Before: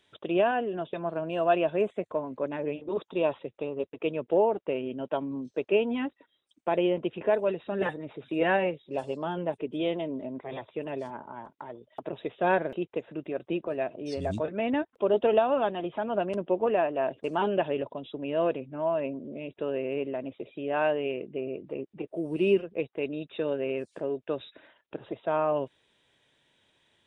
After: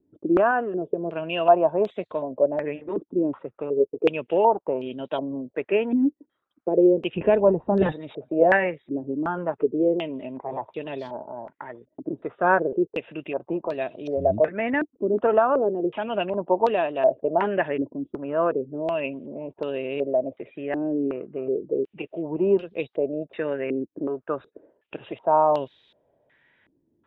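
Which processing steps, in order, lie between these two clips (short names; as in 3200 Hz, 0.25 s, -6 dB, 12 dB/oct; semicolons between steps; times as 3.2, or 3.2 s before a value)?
7.14–7.92 tilt -4.5 dB/oct; stepped low-pass 2.7 Hz 300–4000 Hz; gain +1.5 dB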